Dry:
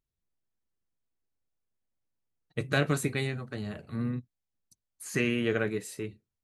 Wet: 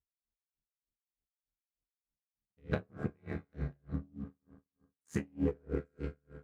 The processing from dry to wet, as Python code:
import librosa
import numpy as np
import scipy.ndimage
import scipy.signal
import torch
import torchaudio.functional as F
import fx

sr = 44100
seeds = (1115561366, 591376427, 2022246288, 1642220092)

y = fx.wiener(x, sr, points=15)
y = fx.peak_eq(y, sr, hz=75.0, db=8.5, octaves=2.4)
y = fx.rev_fdn(y, sr, rt60_s=2.5, lf_ratio=0.7, hf_ratio=0.35, size_ms=13.0, drr_db=6.0)
y = fx.env_lowpass_down(y, sr, base_hz=1000.0, full_db=-21.0)
y = y * np.sin(2.0 * np.pi * 39.0 * np.arange(len(y)) / sr)
y = fx.comb_fb(y, sr, f0_hz=70.0, decay_s=0.3, harmonics='all', damping=0.0, mix_pct=90)
y = fx.leveller(y, sr, passes=1)
y = y * 10.0 ** (-39 * (0.5 - 0.5 * np.cos(2.0 * np.pi * 3.3 * np.arange(len(y)) / sr)) / 20.0)
y = F.gain(torch.from_numpy(y), 4.0).numpy()